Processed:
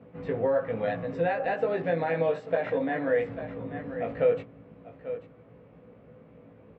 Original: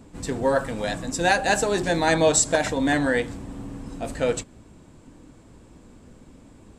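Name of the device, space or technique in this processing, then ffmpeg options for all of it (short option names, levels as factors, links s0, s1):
bass amplifier: -filter_complex "[0:a]asplit=2[s0][s1];[s1]adelay=18,volume=0.75[s2];[s0][s2]amix=inputs=2:normalize=0,asettb=1/sr,asplit=3[s3][s4][s5];[s3]atrim=end=1.534[s6];[s4]atrim=start=1.53:end=3.08,asetpts=PTS-STARTPTS,afade=t=in:d=0.004:c=qsin,afade=t=out:st=1.546:d=0.004:c=qsin,highpass=130[s7];[s5]atrim=start=3.076[s8];[s6][s7]acrossfade=d=0.004:c1=hsin:c2=qsin[s9];[s9][s8]acrossfade=d=0.004:c1=qsin:c2=hsin,aecho=1:1:840:0.158,acompressor=threshold=0.0891:ratio=6,highpass=f=87:w=0.5412,highpass=f=87:w=1.3066,equalizer=f=96:t=q:w=4:g=-8,equalizer=f=230:t=q:w=4:g=-5,equalizer=f=330:t=q:w=4:g=-10,equalizer=f=490:t=q:w=4:g=8,equalizer=f=930:t=q:w=4:g=-7,equalizer=f=1600:t=q:w=4:g=-5,lowpass=f=2300:w=0.5412,lowpass=f=2300:w=1.3066,volume=0.794"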